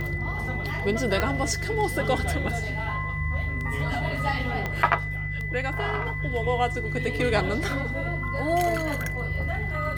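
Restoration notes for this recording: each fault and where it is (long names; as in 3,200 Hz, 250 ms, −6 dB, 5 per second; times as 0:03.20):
mains hum 50 Hz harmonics 3 −32 dBFS
scratch tick 33 1/3 rpm −22 dBFS
whistle 2,000 Hz −32 dBFS
0:01.20: click −10 dBFS
0:04.66: click −15 dBFS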